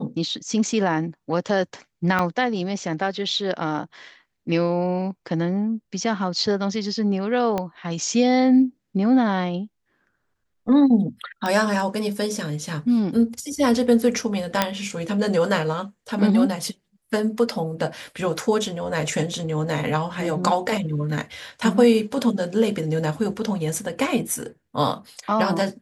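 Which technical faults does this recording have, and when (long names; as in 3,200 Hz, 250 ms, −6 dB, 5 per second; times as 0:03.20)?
0:02.19: drop-out 3.5 ms
0:07.58: click −12 dBFS
0:11.46: click −12 dBFS
0:14.62: click −3 dBFS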